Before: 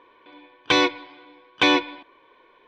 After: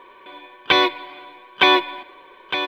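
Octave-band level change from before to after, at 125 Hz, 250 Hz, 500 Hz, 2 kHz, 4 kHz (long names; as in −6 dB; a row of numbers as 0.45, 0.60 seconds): −1.5, −1.5, +3.0, +4.0, +4.5 decibels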